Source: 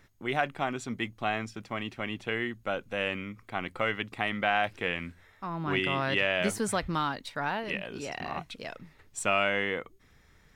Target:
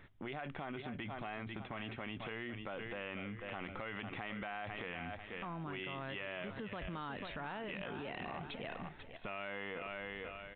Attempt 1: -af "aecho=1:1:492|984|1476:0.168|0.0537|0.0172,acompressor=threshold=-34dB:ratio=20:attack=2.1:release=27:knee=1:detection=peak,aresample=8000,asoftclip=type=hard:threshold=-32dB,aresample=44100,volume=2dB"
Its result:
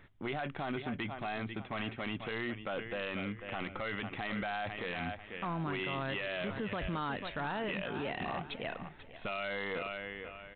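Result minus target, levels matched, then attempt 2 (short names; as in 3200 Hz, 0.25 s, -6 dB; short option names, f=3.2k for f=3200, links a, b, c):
compressor: peak gain reduction -7.5 dB
-af "aecho=1:1:492|984|1476:0.168|0.0537|0.0172,acompressor=threshold=-42dB:ratio=20:attack=2.1:release=27:knee=1:detection=peak,aresample=8000,asoftclip=type=hard:threshold=-32dB,aresample=44100,volume=2dB"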